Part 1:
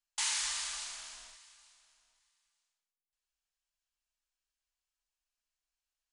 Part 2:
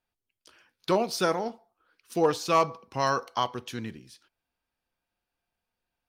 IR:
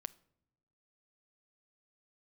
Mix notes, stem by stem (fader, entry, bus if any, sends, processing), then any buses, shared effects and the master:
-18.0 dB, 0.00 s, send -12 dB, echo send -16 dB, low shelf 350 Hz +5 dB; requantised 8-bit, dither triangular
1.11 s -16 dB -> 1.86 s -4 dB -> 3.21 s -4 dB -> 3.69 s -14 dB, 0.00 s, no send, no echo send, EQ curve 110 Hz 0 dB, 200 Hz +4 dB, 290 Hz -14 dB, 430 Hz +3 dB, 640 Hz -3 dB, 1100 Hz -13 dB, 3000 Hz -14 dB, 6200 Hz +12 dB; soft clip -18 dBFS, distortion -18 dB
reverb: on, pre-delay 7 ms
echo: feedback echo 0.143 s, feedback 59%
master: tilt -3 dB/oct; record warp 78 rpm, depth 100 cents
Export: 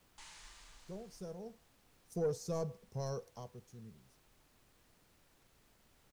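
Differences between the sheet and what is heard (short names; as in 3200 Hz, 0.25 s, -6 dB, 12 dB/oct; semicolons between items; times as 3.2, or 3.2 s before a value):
stem 2 -16.0 dB -> -24.5 dB; master: missing record warp 78 rpm, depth 100 cents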